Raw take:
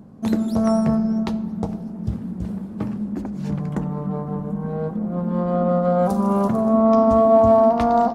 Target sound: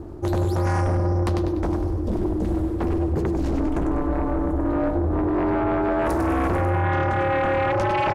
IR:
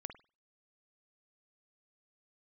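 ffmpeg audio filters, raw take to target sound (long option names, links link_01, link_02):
-af "areverse,acompressor=threshold=-24dB:ratio=5,areverse,aeval=exprs='val(0)*sin(2*PI*130*n/s)':channel_layout=same,aecho=1:1:98|196|294|392|490:0.473|0.189|0.0757|0.0303|0.0121,aeval=exprs='0.126*sin(PI/2*2.24*val(0)/0.126)':channel_layout=same"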